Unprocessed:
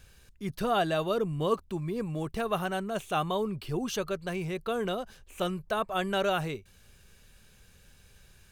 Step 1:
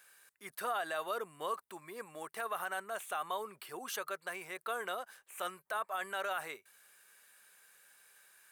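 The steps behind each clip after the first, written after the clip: Bessel high-pass 1300 Hz, order 2; band shelf 4100 Hz -9.5 dB; limiter -30 dBFS, peak gain reduction 8 dB; gain +3.5 dB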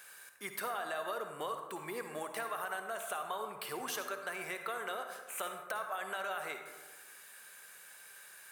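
compressor 4:1, threshold -46 dBFS, peak gain reduction 12.5 dB; on a send at -5.5 dB: reverb RT60 1.3 s, pre-delay 47 ms; on the sum: gain +8 dB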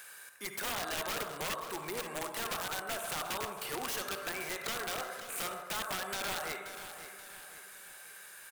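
wrapped overs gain 32.5 dB; feedback echo 0.53 s, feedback 45%, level -11.5 dB; mismatched tape noise reduction encoder only; gain +2.5 dB

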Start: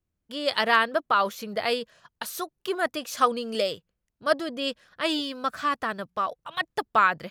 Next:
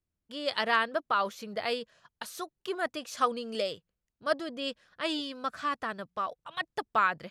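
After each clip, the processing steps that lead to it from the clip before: LPF 10000 Hz 12 dB/oct; gain -5.5 dB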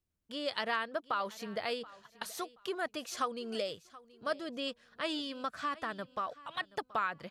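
compressor 2:1, threshold -35 dBFS, peak gain reduction 8.5 dB; feedback echo 0.728 s, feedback 26%, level -20 dB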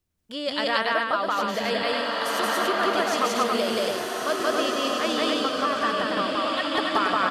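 loudspeakers at several distances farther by 61 m 0 dB, 96 m -3 dB; bloom reverb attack 1.8 s, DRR 0.5 dB; gain +7 dB

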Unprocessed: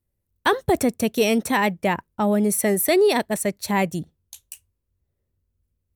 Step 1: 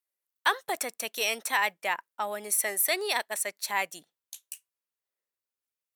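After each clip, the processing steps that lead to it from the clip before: HPF 1000 Hz 12 dB/oct; gain -2 dB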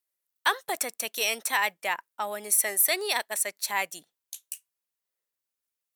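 high shelf 4700 Hz +4.5 dB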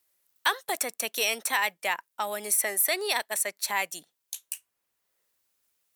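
three-band squash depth 40%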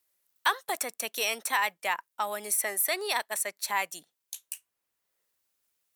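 dynamic EQ 1100 Hz, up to +5 dB, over -39 dBFS, Q 1.5; gain -3 dB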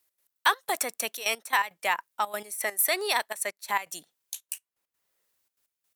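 step gate "x.x..x.xxxxx" 167 bpm -12 dB; gain +3 dB

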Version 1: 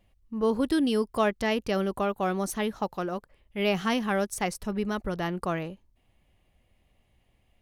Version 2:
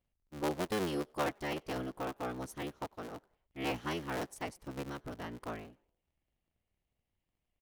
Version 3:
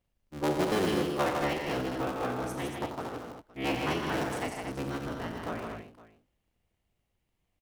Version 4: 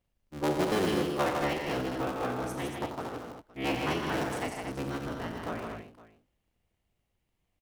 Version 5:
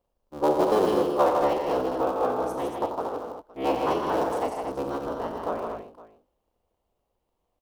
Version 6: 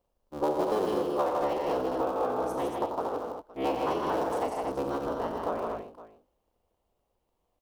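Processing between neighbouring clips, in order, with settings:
cycle switcher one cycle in 3, inverted; frequency-shifting echo 93 ms, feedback 46%, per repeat +89 Hz, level -23 dB; upward expander 1.5:1, over -42 dBFS; gain -8.5 dB
high shelf 10000 Hz -4 dB; tapped delay 40/89/119/156/231/513 ms -9.5/-8.5/-12.5/-4.5/-6.5/-18.5 dB; gain +4 dB
nothing audible
graphic EQ 125/500/1000/2000/8000 Hz -7/+9/+9/-9/-3 dB
compressor 3:1, threshold -26 dBFS, peak gain reduction 8 dB

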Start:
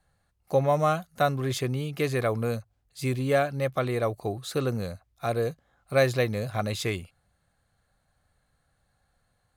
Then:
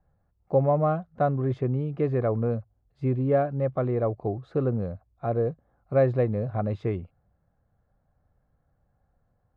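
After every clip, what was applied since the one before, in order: Bessel low-pass 680 Hz, order 2; gain +3 dB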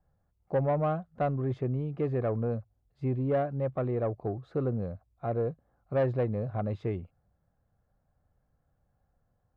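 soft clip -16 dBFS, distortion -19 dB; gain -3.5 dB

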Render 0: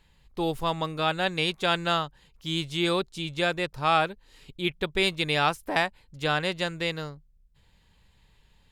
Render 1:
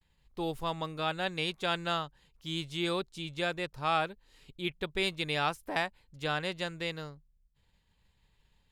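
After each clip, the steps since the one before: expander -57 dBFS; gain -6.5 dB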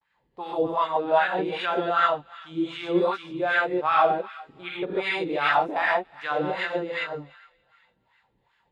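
thin delay 0.29 s, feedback 44%, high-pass 1500 Hz, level -16.5 dB; non-linear reverb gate 0.17 s rising, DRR -6.5 dB; wah 2.6 Hz 320–1600 Hz, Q 2.2; gain +8.5 dB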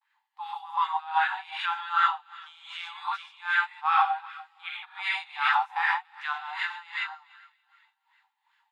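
brick-wall FIR high-pass 760 Hz; gain -1 dB

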